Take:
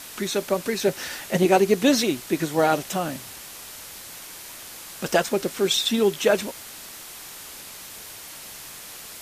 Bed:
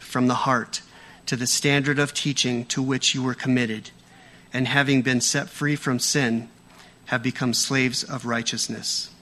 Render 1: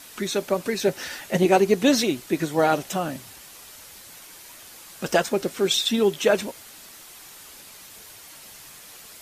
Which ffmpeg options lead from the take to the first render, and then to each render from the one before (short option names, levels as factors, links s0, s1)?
-af "afftdn=nr=6:nf=-41"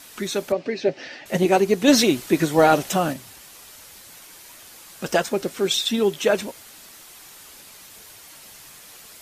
-filter_complex "[0:a]asettb=1/sr,asplit=3[s0][s1][s2];[s0]atrim=end=0.524[s3];[s1]atrim=start=0.52:end=1.26,asetpts=PTS-STARTPTS,afade=t=in:d=0.004:c=qsin,afade=t=out:st=0.736:d=0.004:c=qsin,highpass=f=120:w=0.5412,highpass=f=120:w=1.3066,equalizer=f=190:t=q:w=4:g=-7,equalizer=f=280:t=q:w=4:g=4,equalizer=f=630:t=q:w=4:g=4,equalizer=f=1000:t=q:w=4:g=-8,equalizer=f=1400:t=q:w=4:g=-8,equalizer=f=3600:t=q:w=4:g=-6,lowpass=f=4600:w=0.5412,lowpass=f=4600:w=1.3066[s4];[s2]atrim=start=1.256[s5];[s3][s4]acrossfade=d=0.004:c1=hsin:c2=qsin[s6];[s6][s5]acrossfade=d=0.004:c1=qsin:c2=hsin,asplit=3[s7][s8][s9];[s7]afade=t=out:st=1.87:d=0.02[s10];[s8]acontrast=32,afade=t=in:st=1.87:d=0.02,afade=t=out:st=3.12:d=0.02[s11];[s9]afade=t=in:st=3.12:d=0.02[s12];[s10][s11][s12]amix=inputs=3:normalize=0"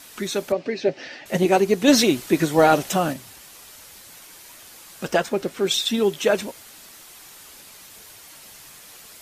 -filter_complex "[0:a]asettb=1/sr,asplit=3[s0][s1][s2];[s0]atrim=end=5.064[s3];[s1]atrim=start=5.06:end=5.67,asetpts=PTS-STARTPTS,afade=t=in:d=0.004:c=qsin,afade=t=out:st=0.606:d=0.004:c=qsin,bass=f=250:g=0,treble=f=4000:g=-5[s4];[s2]atrim=start=5.666[s5];[s3][s4]acrossfade=d=0.004:c1=hsin:c2=qsin[s6];[s6][s5]acrossfade=d=0.004:c1=qsin:c2=hsin"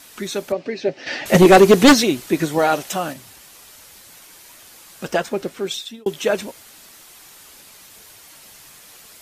-filter_complex "[0:a]asplit=3[s0][s1][s2];[s0]afade=t=out:st=1.06:d=0.02[s3];[s1]aeval=exprs='0.631*sin(PI/2*2.51*val(0)/0.631)':c=same,afade=t=in:st=1.06:d=0.02,afade=t=out:st=1.92:d=0.02[s4];[s2]afade=t=in:st=1.92:d=0.02[s5];[s3][s4][s5]amix=inputs=3:normalize=0,asettb=1/sr,asplit=3[s6][s7][s8];[s6]atrim=end=2.584[s9];[s7]atrim=start=2.58:end=3.17,asetpts=PTS-STARTPTS,afade=t=in:d=0.004:c=qsin,afade=t=out:st=0.586:d=0.004:c=qsin,lowshelf=f=420:g=-7[s10];[s8]atrim=start=3.166[s11];[s9][s10]acrossfade=d=0.004:c1=hsin:c2=qsin[s12];[s12][s11]acrossfade=d=0.004:c1=qsin:c2=hsin,asplit=2[s13][s14];[s13]atrim=end=6.06,asetpts=PTS-STARTPTS,afade=t=out:st=5.47:d=0.59[s15];[s14]atrim=start=6.06,asetpts=PTS-STARTPTS,afade=t=in:d=0.004:c=hsin[s16];[s15][s16]concat=n=2:v=0:a=1"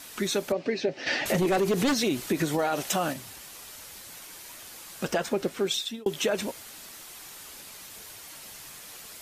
-af "alimiter=limit=0.211:level=0:latency=1:release=44,acompressor=threshold=0.0794:ratio=6"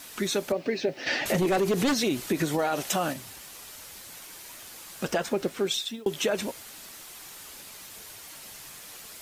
-af "acrusher=bits=9:mix=0:aa=0.000001"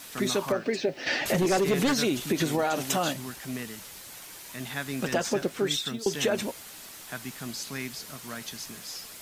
-filter_complex "[1:a]volume=0.188[s0];[0:a][s0]amix=inputs=2:normalize=0"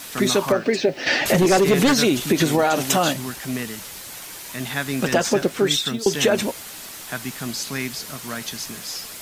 -af "volume=2.51"